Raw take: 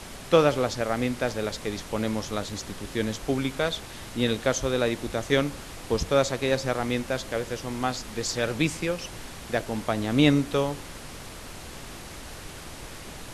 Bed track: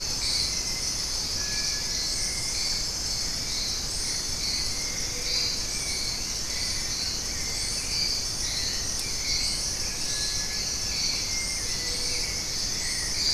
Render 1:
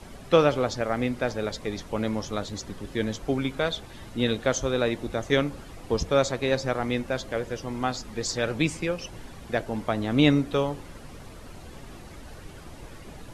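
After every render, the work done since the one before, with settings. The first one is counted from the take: noise reduction 10 dB, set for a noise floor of -41 dBFS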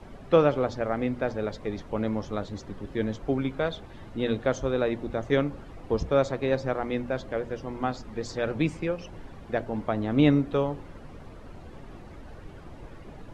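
low-pass 1.4 kHz 6 dB/octave; hum notches 60/120/180/240 Hz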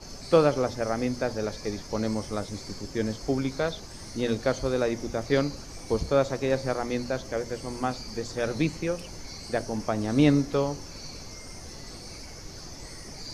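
add bed track -16.5 dB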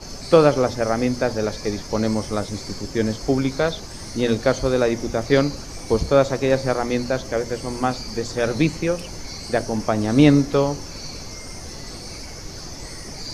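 trim +7 dB; peak limiter -2 dBFS, peak gain reduction 1.5 dB

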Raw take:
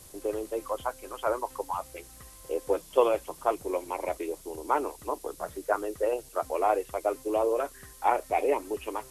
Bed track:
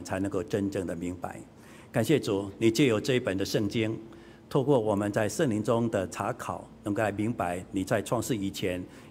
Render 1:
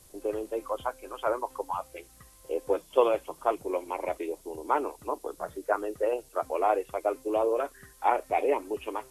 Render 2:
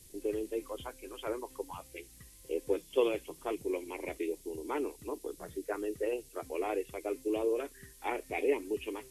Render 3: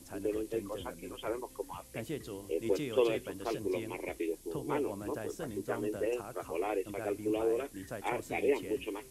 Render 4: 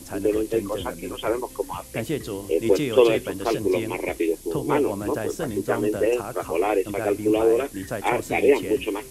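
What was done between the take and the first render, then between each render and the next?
noise print and reduce 6 dB
high-order bell 900 Hz -13 dB
add bed track -15 dB
trim +12 dB

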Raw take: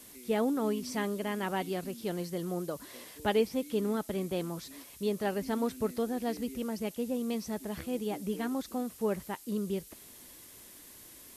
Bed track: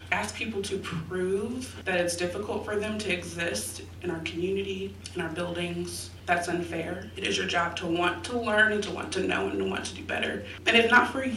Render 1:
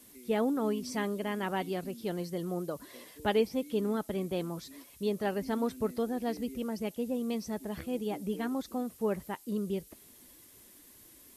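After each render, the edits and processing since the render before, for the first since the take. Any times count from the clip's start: noise reduction 6 dB, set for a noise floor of -52 dBFS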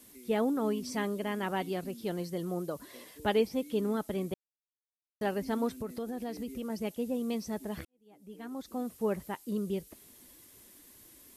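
4.34–5.21 s: mute; 5.77–6.70 s: compression, threshold -33 dBFS; 7.85–8.87 s: fade in quadratic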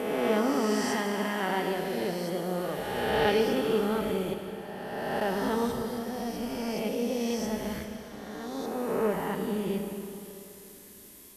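reverse spectral sustain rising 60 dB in 2.12 s; Schroeder reverb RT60 2.9 s, combs from 26 ms, DRR 4.5 dB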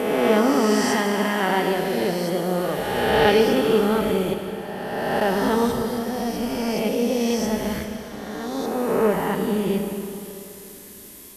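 trim +8 dB

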